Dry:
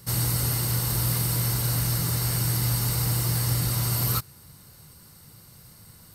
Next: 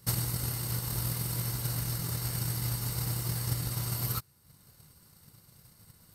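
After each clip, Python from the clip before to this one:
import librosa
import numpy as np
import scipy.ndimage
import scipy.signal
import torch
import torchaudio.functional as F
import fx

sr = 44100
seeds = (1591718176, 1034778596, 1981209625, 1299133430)

y = fx.transient(x, sr, attack_db=9, sustain_db=-6)
y = y * 10.0 ** (-8.5 / 20.0)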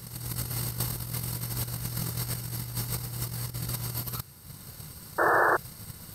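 y = fx.over_compress(x, sr, threshold_db=-38.0, ratio=-0.5)
y = fx.spec_paint(y, sr, seeds[0], shape='noise', start_s=5.18, length_s=0.39, low_hz=320.0, high_hz=1800.0, level_db=-29.0)
y = y * 10.0 ** (6.5 / 20.0)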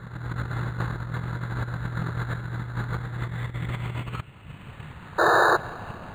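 y = fx.filter_sweep_lowpass(x, sr, from_hz=1600.0, to_hz=5300.0, start_s=2.93, end_s=5.96, q=3.8)
y = fx.echo_feedback(y, sr, ms=210, feedback_pct=59, wet_db=-21)
y = np.interp(np.arange(len(y)), np.arange(len(y))[::8], y[::8])
y = y * 10.0 ** (4.5 / 20.0)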